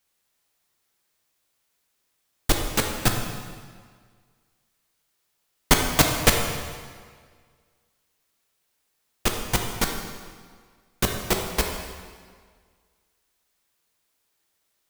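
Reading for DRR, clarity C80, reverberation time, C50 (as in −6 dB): 2.0 dB, 5.5 dB, 1.8 s, 4.0 dB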